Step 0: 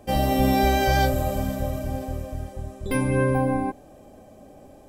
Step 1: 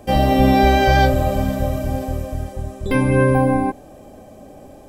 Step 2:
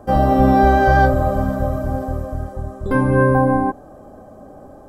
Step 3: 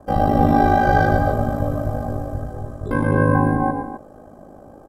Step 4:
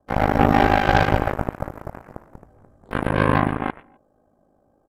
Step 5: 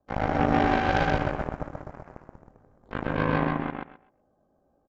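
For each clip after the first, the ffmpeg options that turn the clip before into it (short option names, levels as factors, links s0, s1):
-filter_complex "[0:a]acrossover=split=4900[s0][s1];[s1]acompressor=threshold=0.00447:ratio=4:attack=1:release=60[s2];[s0][s2]amix=inputs=2:normalize=0,volume=2.11"
-af "highshelf=f=1800:t=q:w=3:g=-9"
-filter_complex "[0:a]aeval=exprs='val(0)*sin(2*PI*26*n/s)':c=same,asplit=2[s0][s1];[s1]aecho=0:1:113.7|259.5:0.562|0.355[s2];[s0][s2]amix=inputs=2:normalize=0,volume=0.891"
-af "aeval=exprs='0.841*(cos(1*acos(clip(val(0)/0.841,-1,1)))-cos(1*PI/2))+0.133*(cos(7*acos(clip(val(0)/0.841,-1,1)))-cos(7*PI/2))':c=same"
-filter_complex "[0:a]asplit=2[s0][s1];[s1]aecho=0:1:128|256|384:0.708|0.127|0.0229[s2];[s0][s2]amix=inputs=2:normalize=0,aresample=16000,aresample=44100,volume=0.398"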